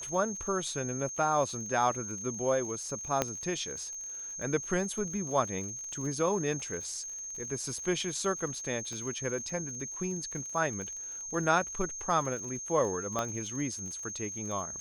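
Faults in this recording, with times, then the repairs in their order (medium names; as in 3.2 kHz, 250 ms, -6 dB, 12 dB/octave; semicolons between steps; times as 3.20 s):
crackle 52 per s -40 dBFS
whine 6.4 kHz -38 dBFS
3.22 s: pop -12 dBFS
8.93 s: pop
13.19 s: pop -17 dBFS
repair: de-click; band-stop 6.4 kHz, Q 30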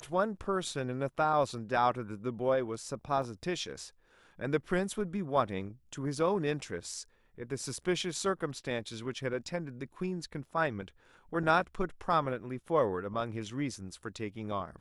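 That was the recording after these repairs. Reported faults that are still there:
3.22 s: pop
8.93 s: pop
13.19 s: pop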